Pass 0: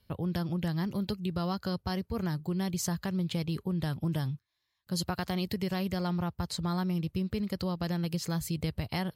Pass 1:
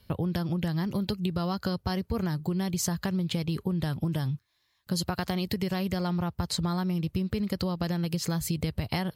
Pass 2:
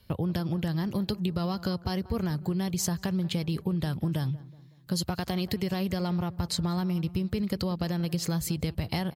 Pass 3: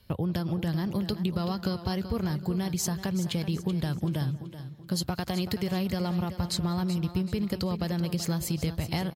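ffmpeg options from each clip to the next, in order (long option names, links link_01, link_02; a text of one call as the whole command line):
ffmpeg -i in.wav -af "acompressor=threshold=-34dB:ratio=6,volume=8.5dB" out.wav
ffmpeg -i in.wav -filter_complex "[0:a]asplit=2[link_01][link_02];[link_02]adelay=186,lowpass=frequency=1500:poles=1,volume=-18dB,asplit=2[link_03][link_04];[link_04]adelay=186,lowpass=frequency=1500:poles=1,volume=0.49,asplit=2[link_05][link_06];[link_06]adelay=186,lowpass=frequency=1500:poles=1,volume=0.49,asplit=2[link_07][link_08];[link_08]adelay=186,lowpass=frequency=1500:poles=1,volume=0.49[link_09];[link_01][link_03][link_05][link_07][link_09]amix=inputs=5:normalize=0,acrossover=split=840|2200[link_10][link_11][link_12];[link_11]asoftclip=type=tanh:threshold=-37.5dB[link_13];[link_10][link_13][link_12]amix=inputs=3:normalize=0" out.wav
ffmpeg -i in.wav -filter_complex "[0:a]asplit=2[link_01][link_02];[link_02]aecho=0:1:381|762|1143|1524:0.266|0.0931|0.0326|0.0114[link_03];[link_01][link_03]amix=inputs=2:normalize=0" -ar 48000 -c:a aac -b:a 96k out.aac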